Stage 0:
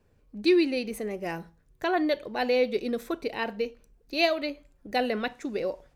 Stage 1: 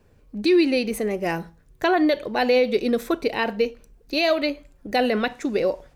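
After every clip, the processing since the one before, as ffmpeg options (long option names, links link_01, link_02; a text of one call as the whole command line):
ffmpeg -i in.wav -af "alimiter=limit=-19dB:level=0:latency=1:release=60,volume=8dB" out.wav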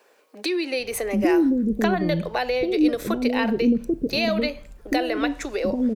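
ffmpeg -i in.wav -filter_complex "[0:a]acrossover=split=270[link_01][link_02];[link_02]acompressor=threshold=-30dB:ratio=6[link_03];[link_01][link_03]amix=inputs=2:normalize=0,acrossover=split=420[link_04][link_05];[link_04]adelay=790[link_06];[link_06][link_05]amix=inputs=2:normalize=0,volume=8.5dB" out.wav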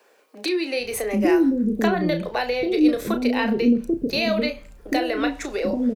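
ffmpeg -i in.wav -filter_complex "[0:a]acrossover=split=110|850[link_01][link_02][link_03];[link_01]alimiter=level_in=16dB:limit=-24dB:level=0:latency=1,volume=-16dB[link_04];[link_04][link_02][link_03]amix=inputs=3:normalize=0,asplit=2[link_05][link_06];[link_06]adelay=33,volume=-8dB[link_07];[link_05][link_07]amix=inputs=2:normalize=0" out.wav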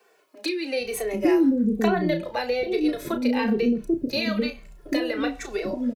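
ffmpeg -i in.wav -filter_complex "[0:a]asplit=2[link_01][link_02];[link_02]adelay=2.2,afreqshift=-1.1[link_03];[link_01][link_03]amix=inputs=2:normalize=1" out.wav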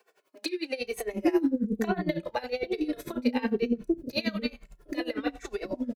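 ffmpeg -i in.wav -af "aeval=exprs='val(0)*pow(10,-20*(0.5-0.5*cos(2*PI*11*n/s))/20)':channel_layout=same" out.wav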